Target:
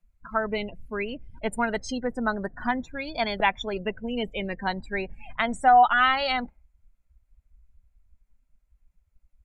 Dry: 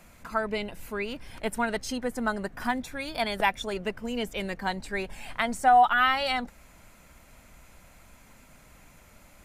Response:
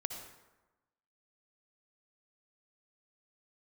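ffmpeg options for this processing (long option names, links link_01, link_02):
-af "afftdn=noise_reduction=35:noise_floor=-37,volume=2dB"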